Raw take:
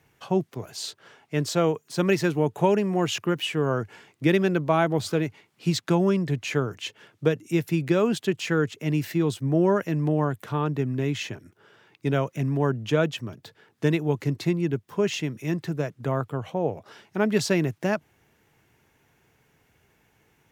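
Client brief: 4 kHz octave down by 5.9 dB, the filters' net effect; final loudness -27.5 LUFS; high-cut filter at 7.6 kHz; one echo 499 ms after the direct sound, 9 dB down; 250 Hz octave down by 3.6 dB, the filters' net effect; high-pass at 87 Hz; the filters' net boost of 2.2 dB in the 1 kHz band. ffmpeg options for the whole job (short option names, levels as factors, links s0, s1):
-af "highpass=87,lowpass=7600,equalizer=f=250:t=o:g=-6,equalizer=f=1000:t=o:g=3.5,equalizer=f=4000:t=o:g=-8.5,aecho=1:1:499:0.355"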